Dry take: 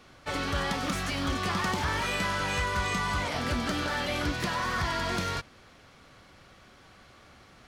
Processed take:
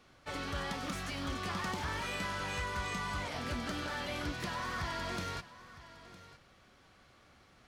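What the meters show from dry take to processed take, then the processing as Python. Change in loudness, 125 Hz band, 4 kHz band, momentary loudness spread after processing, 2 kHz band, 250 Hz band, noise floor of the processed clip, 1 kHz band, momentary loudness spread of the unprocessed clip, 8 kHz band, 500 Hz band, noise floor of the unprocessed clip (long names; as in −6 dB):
−8.0 dB, −8.0 dB, −8.0 dB, 17 LU, −8.0 dB, −8.0 dB, −63 dBFS, −8.0 dB, 2 LU, −8.0 dB, −8.0 dB, −56 dBFS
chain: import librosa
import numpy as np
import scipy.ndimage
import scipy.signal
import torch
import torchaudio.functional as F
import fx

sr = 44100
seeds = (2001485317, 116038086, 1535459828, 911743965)

y = x + 10.0 ** (-16.5 / 20.0) * np.pad(x, (int(959 * sr / 1000.0), 0))[:len(x)]
y = y * librosa.db_to_amplitude(-8.0)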